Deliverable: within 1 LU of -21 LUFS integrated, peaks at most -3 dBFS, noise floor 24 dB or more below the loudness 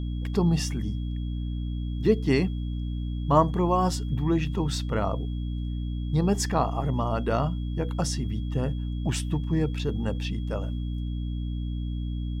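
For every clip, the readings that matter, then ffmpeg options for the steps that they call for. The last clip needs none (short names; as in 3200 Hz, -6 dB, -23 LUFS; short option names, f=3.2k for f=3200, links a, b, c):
hum 60 Hz; harmonics up to 300 Hz; hum level -28 dBFS; steady tone 3300 Hz; tone level -52 dBFS; loudness -28.0 LUFS; peak -7.0 dBFS; loudness target -21.0 LUFS
-> -af "bandreject=f=60:t=h:w=4,bandreject=f=120:t=h:w=4,bandreject=f=180:t=h:w=4,bandreject=f=240:t=h:w=4,bandreject=f=300:t=h:w=4"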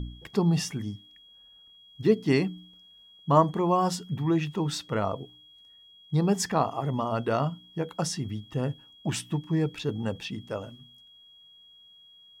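hum none; steady tone 3300 Hz; tone level -52 dBFS
-> -af "bandreject=f=3.3k:w=30"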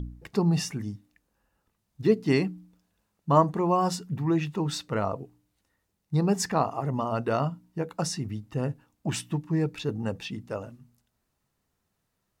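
steady tone none; loudness -28.0 LUFS; peak -7.5 dBFS; loudness target -21.0 LUFS
-> -af "volume=7dB,alimiter=limit=-3dB:level=0:latency=1"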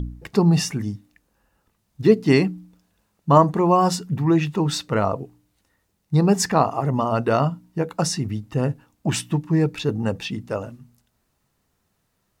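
loudness -21.5 LUFS; peak -3.0 dBFS; noise floor -71 dBFS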